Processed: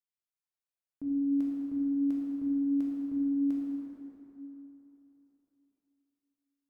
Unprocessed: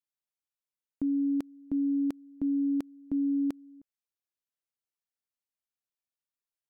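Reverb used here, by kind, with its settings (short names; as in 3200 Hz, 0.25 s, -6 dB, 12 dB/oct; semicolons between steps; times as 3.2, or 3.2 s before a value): plate-style reverb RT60 3.4 s, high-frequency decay 0.55×, DRR -5.5 dB; gain -10.5 dB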